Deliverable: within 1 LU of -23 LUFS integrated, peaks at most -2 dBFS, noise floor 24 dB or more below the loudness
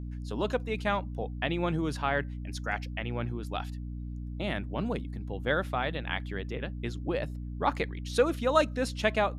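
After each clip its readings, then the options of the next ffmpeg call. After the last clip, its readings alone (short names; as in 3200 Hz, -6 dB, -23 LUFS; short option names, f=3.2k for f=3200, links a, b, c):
hum 60 Hz; harmonics up to 300 Hz; hum level -35 dBFS; loudness -32.0 LUFS; peak -10.5 dBFS; loudness target -23.0 LUFS
-> -af "bandreject=f=60:t=h:w=4,bandreject=f=120:t=h:w=4,bandreject=f=180:t=h:w=4,bandreject=f=240:t=h:w=4,bandreject=f=300:t=h:w=4"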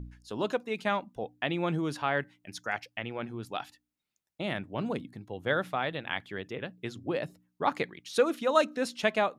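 hum none; loudness -32.5 LUFS; peak -10.5 dBFS; loudness target -23.0 LUFS
-> -af "volume=9.5dB,alimiter=limit=-2dB:level=0:latency=1"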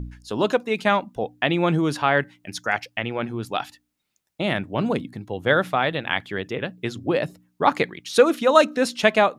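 loudness -23.0 LUFS; peak -2.0 dBFS; noise floor -75 dBFS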